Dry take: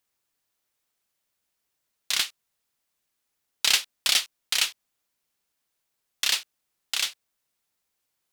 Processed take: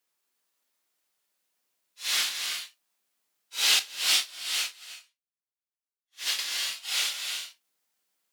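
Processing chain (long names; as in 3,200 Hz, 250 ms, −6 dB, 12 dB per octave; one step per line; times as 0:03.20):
random phases in long frames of 200 ms
high-pass filter 210 Hz 12 dB per octave
reverb whose tail is shaped and stops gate 380 ms rising, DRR 4.5 dB
0:03.79–0:06.39: expander for the loud parts 2.5 to 1, over −36 dBFS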